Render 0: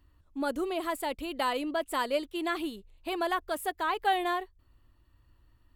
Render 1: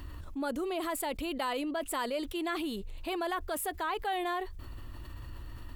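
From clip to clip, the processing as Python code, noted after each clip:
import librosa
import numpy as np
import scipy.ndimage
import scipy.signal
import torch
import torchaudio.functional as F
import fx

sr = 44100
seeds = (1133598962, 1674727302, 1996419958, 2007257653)

y = fx.env_flatten(x, sr, amount_pct=70)
y = F.gain(torch.from_numpy(y), -8.0).numpy()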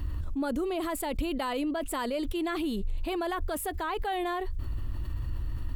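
y = fx.low_shelf(x, sr, hz=240.0, db=12.0)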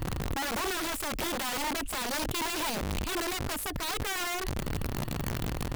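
y = (np.mod(10.0 ** (27.5 / 20.0) * x + 1.0, 2.0) - 1.0) / 10.0 ** (27.5 / 20.0)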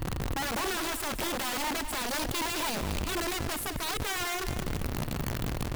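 y = fx.echo_feedback(x, sr, ms=203, feedback_pct=34, wet_db=-11)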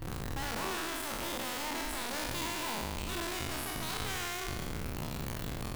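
y = fx.spec_trails(x, sr, decay_s=1.67)
y = F.gain(torch.from_numpy(y), -9.0).numpy()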